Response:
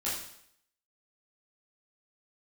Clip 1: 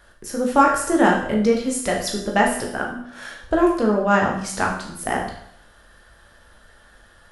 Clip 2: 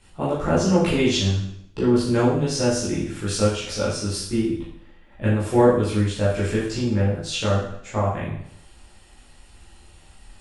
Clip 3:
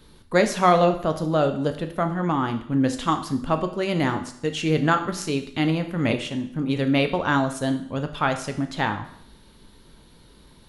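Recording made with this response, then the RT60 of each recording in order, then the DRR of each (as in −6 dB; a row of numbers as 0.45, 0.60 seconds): 2; 0.70, 0.70, 0.70 seconds; −1.0, −9.5, 7.0 decibels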